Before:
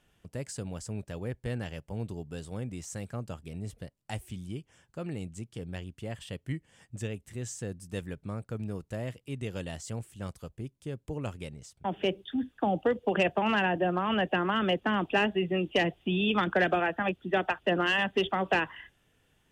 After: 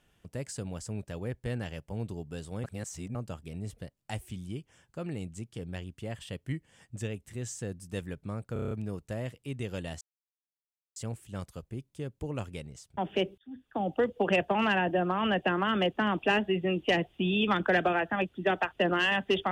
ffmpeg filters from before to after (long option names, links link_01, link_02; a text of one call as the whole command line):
ffmpeg -i in.wav -filter_complex "[0:a]asplit=11[link_01][link_02][link_03][link_04][link_05][link_06][link_07][link_08][link_09][link_10][link_11];[link_01]atrim=end=2.642[link_12];[link_02]atrim=start=2.638:end=3.152,asetpts=PTS-STARTPTS,areverse[link_13];[link_03]atrim=start=3.148:end=8.562[link_14];[link_04]atrim=start=8.528:end=8.562[link_15];[link_05]atrim=start=8.528:end=8.562[link_16];[link_06]atrim=start=8.528:end=8.562[link_17];[link_07]atrim=start=8.528:end=8.562[link_18];[link_08]atrim=start=8.528:end=8.562[link_19];[link_09]atrim=start=8.528:end=9.83,asetpts=PTS-STARTPTS,afade=type=out:start_time=1.298:duration=0.004:curve=hsin,apad=pad_dur=0.95[link_20];[link_10]atrim=start=9.83:end=12.25,asetpts=PTS-STARTPTS,afade=type=in:duration=0.004:curve=hsin,afade=type=out:start_time=2.416:duration=0.004:curve=hsin[link_21];[link_11]atrim=start=12.25,asetpts=PTS-STARTPTS,afade=type=in:duration=0.66[link_22];[link_12][link_13]acrossfade=duration=0.004:curve1=hsin:curve2=hsin[link_23];[link_23][link_14]acrossfade=duration=0.004:curve1=hsin:curve2=hsin[link_24];[link_24][link_15]acrossfade=duration=0.004:curve1=hsin:curve2=hsin[link_25];[link_25][link_16]acrossfade=duration=0.004:curve1=hsin:curve2=hsin[link_26];[link_26][link_17]acrossfade=duration=0.004:curve1=hsin:curve2=hsin[link_27];[link_27][link_18]acrossfade=duration=0.004:curve1=hsin:curve2=hsin[link_28];[link_28][link_19]acrossfade=duration=0.004:curve1=hsin:curve2=hsin[link_29];[link_20][link_21][link_22]concat=n=3:v=0:a=1[link_30];[link_29][link_30]acrossfade=duration=0.004:curve1=hsin:curve2=hsin" out.wav